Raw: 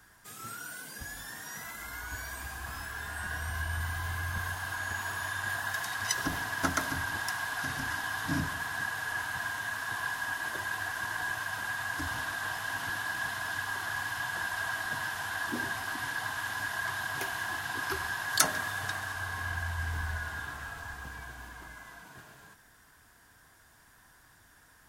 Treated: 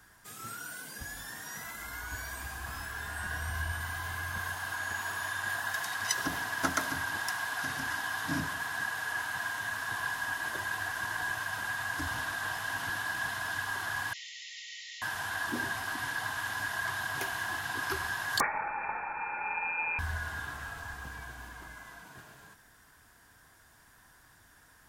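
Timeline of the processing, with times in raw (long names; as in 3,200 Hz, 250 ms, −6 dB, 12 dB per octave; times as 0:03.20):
0:03.72–0:09.60: low-shelf EQ 120 Hz −9.5 dB
0:14.13–0:15.02: linear-phase brick-wall band-pass 1,800–7,400 Hz
0:18.40–0:19.99: voice inversion scrambler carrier 2,500 Hz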